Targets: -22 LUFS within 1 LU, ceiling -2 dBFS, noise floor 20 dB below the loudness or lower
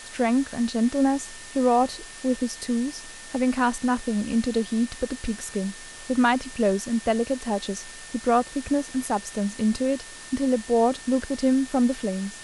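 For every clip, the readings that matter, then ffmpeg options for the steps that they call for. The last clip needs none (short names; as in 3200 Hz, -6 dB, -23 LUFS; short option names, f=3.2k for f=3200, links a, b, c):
steady tone 1800 Hz; tone level -46 dBFS; noise floor -42 dBFS; noise floor target -45 dBFS; loudness -25.0 LUFS; peak -9.0 dBFS; loudness target -22.0 LUFS
-> -af "bandreject=f=1.8k:w=30"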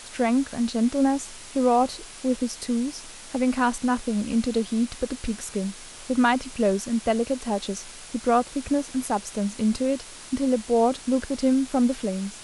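steady tone none; noise floor -43 dBFS; noise floor target -45 dBFS
-> -af "afftdn=nr=6:nf=-43"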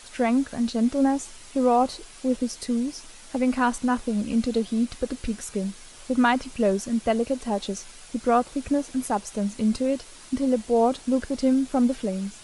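noise floor -46 dBFS; loudness -25.0 LUFS; peak -9.0 dBFS; loudness target -22.0 LUFS
-> -af "volume=3dB"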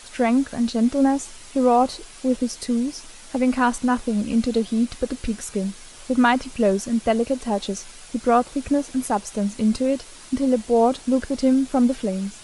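loudness -22.0 LUFS; peak -6.0 dBFS; noise floor -43 dBFS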